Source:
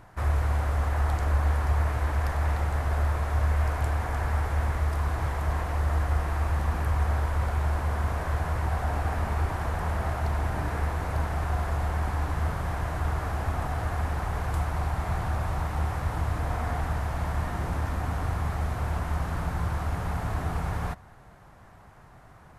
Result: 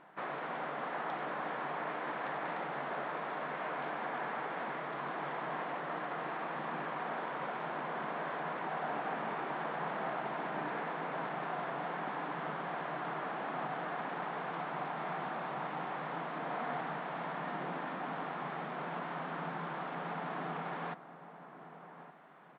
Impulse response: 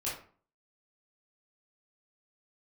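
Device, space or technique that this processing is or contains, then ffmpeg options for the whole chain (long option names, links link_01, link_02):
Bluetooth headset: -filter_complex "[0:a]afftfilt=real='re*between(b*sr/4096,130,7800)':imag='im*between(b*sr/4096,130,7800)':win_size=4096:overlap=0.75,highpass=220,asplit=2[link_01][link_02];[link_02]adelay=1166,volume=-12dB,highshelf=frequency=4000:gain=-26.2[link_03];[link_01][link_03]amix=inputs=2:normalize=0,aresample=8000,aresample=44100,volume=-3.5dB" -ar 32000 -c:a sbc -b:a 64k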